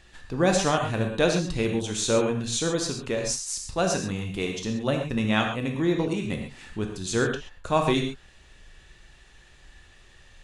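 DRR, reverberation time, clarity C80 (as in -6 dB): 2.0 dB, no single decay rate, 7.0 dB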